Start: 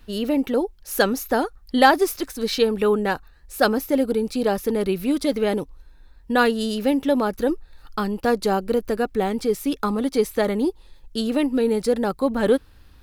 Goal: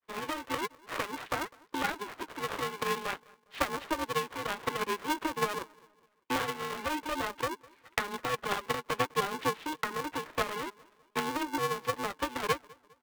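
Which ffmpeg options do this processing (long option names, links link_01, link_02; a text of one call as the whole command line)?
ffmpeg -i in.wav -filter_complex "[0:a]agate=range=-33dB:threshold=-38dB:ratio=3:detection=peak,dynaudnorm=framelen=220:gausssize=21:maxgain=11.5dB,alimiter=limit=-7dB:level=0:latency=1:release=486,acompressor=threshold=-25dB:ratio=4,flanger=delay=2.2:depth=7:regen=25:speed=1.2:shape=sinusoidal,acrusher=samples=14:mix=1:aa=0.000001:lfo=1:lforange=22.4:lforate=0.49,aeval=exprs='0.168*(cos(1*acos(clip(val(0)/0.168,-1,1)))-cos(1*PI/2))+0.0335*(cos(3*acos(clip(val(0)/0.168,-1,1)))-cos(3*PI/2))':channel_layout=same,asplit=2[link_01][link_02];[link_02]adelay=203,lowpass=frequency=1200:poles=1,volume=-23.5dB,asplit=2[link_03][link_04];[link_04]adelay=203,lowpass=frequency=1200:poles=1,volume=0.47,asplit=2[link_05][link_06];[link_06]adelay=203,lowpass=frequency=1200:poles=1,volume=0.47[link_07];[link_01][link_03][link_05][link_07]amix=inputs=4:normalize=0,highpass=frequency=260:width_type=q:width=0.5412,highpass=frequency=260:width_type=q:width=1.307,lowpass=frequency=3300:width_type=q:width=0.5176,lowpass=frequency=3300:width_type=q:width=0.7071,lowpass=frequency=3300:width_type=q:width=1.932,afreqshift=330,aeval=exprs='val(0)*sgn(sin(2*PI*310*n/s))':channel_layout=same,volume=4.5dB" out.wav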